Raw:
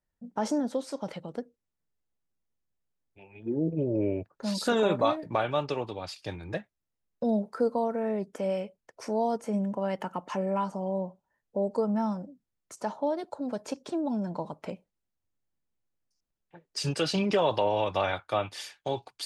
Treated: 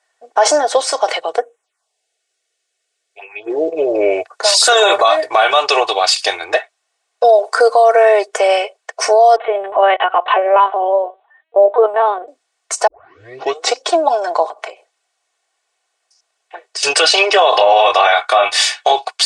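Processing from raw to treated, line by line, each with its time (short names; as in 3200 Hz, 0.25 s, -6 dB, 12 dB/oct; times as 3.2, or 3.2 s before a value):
1.36–3.5 envelope phaser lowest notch 150 Hz, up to 4600 Hz, full sweep at -42 dBFS
4.11–6.4 high shelf 5500 Hz +10 dB
7.44–8.27 high shelf 2600 Hz +7.5 dB
9.36–12.28 LPC vocoder at 8 kHz pitch kept
12.87 tape start 0.95 s
14.46–16.83 compressor 8:1, threshold -46 dBFS
17.5–18.92 doubler 23 ms -4 dB
whole clip: elliptic band-pass 560–8800 Hz, stop band 40 dB; comb 2.7 ms, depth 69%; maximiser +26 dB; gain -1 dB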